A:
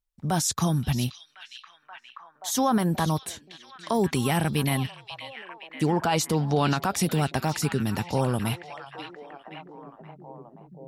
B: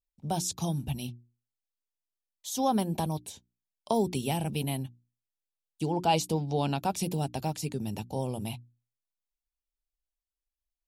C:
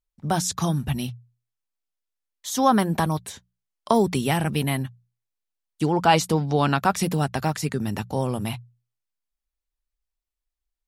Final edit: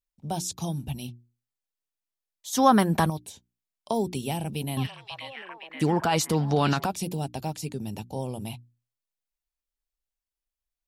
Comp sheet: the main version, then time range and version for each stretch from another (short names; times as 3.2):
B
2.53–3.1 from C
4.77–6.86 from A